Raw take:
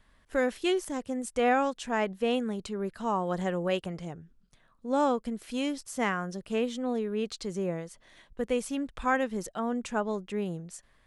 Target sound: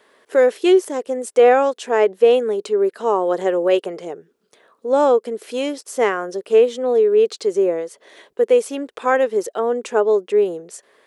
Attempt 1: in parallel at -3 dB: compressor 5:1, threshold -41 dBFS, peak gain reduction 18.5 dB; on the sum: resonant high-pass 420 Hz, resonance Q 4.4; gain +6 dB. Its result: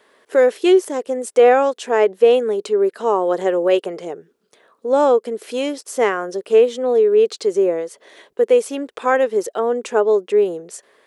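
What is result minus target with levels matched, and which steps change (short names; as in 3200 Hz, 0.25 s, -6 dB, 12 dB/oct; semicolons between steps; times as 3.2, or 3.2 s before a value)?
compressor: peak gain reduction -7 dB
change: compressor 5:1, threshold -50 dBFS, peak gain reduction 26 dB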